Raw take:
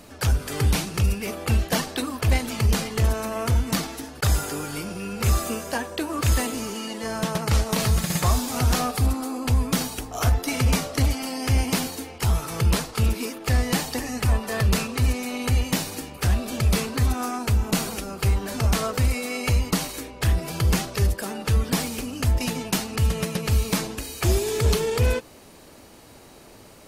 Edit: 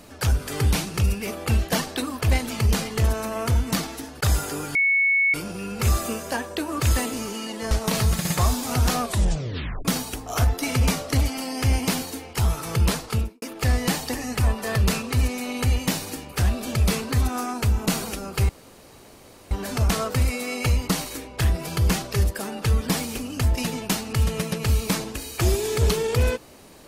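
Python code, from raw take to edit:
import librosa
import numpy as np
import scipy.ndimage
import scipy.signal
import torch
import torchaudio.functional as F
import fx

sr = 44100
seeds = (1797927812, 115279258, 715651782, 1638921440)

y = fx.studio_fade_out(x, sr, start_s=12.92, length_s=0.35)
y = fx.edit(y, sr, fx.insert_tone(at_s=4.75, length_s=0.59, hz=2210.0, db=-16.5),
    fx.cut(start_s=7.12, length_s=0.44),
    fx.tape_stop(start_s=8.86, length_s=0.84),
    fx.insert_room_tone(at_s=18.34, length_s=1.02), tone=tone)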